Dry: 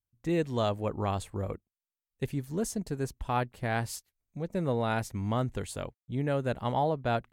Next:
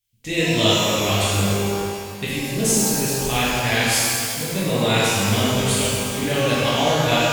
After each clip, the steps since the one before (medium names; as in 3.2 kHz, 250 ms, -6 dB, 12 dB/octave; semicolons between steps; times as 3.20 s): resonant high shelf 1.8 kHz +11.5 dB, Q 1.5; pitch-shifted reverb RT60 2.2 s, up +12 st, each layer -8 dB, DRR -9.5 dB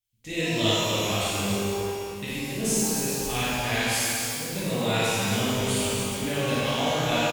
loudspeakers at several distances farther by 19 m -3 dB, 97 m -7 dB; trim -8.5 dB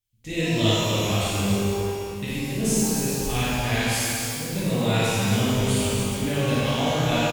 bass shelf 230 Hz +8.5 dB